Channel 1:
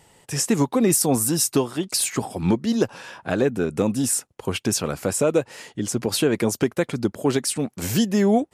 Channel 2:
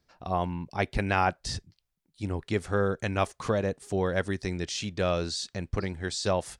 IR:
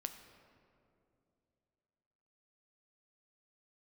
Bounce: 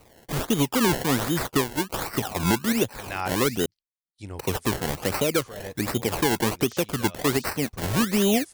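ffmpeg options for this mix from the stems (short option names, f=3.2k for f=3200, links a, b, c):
-filter_complex "[0:a]acrossover=split=400[a][b];[b]acompressor=threshold=-29dB:ratio=5[c];[a][c]amix=inputs=2:normalize=0,acrusher=samples=25:mix=1:aa=0.000001:lfo=1:lforange=25:lforate=1.3,volume=2dB,asplit=3[d][e][f];[d]atrim=end=3.66,asetpts=PTS-STARTPTS,afade=t=out:st=3.656:d=0.004:c=hsin[g];[e]atrim=start=3.66:end=4.26,asetpts=PTS-STARTPTS,volume=0[h];[f]atrim=start=4.26,asetpts=PTS-STARTPTS,afade=t=in:d=0.004:c=hsin[i];[g][h][i]concat=n=3:v=0:a=1,asplit=2[j][k];[1:a]agate=range=-33dB:threshold=-53dB:ratio=3:detection=peak,adynamicequalizer=threshold=0.00891:dfrequency=1600:dqfactor=0.7:tfrequency=1600:tqfactor=0.7:attack=5:release=100:ratio=0.375:range=2:mode=boostabove:tftype=highshelf,adelay=2000,volume=-4dB[l];[k]apad=whole_len=379037[m];[l][m]sidechaincompress=threshold=-32dB:ratio=8:attack=20:release=340[n];[j][n]amix=inputs=2:normalize=0,equalizer=f=200:t=o:w=1.5:g=-4.5,crystalizer=i=1:c=0,asoftclip=type=tanh:threshold=-10.5dB"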